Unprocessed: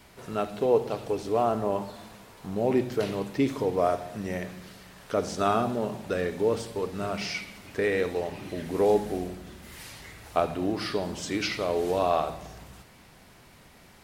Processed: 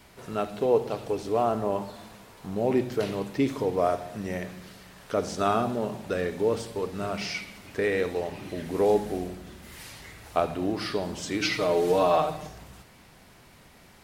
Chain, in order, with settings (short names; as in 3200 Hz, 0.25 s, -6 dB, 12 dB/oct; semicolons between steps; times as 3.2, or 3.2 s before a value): 11.41–12.49 comb 6.5 ms, depth 97%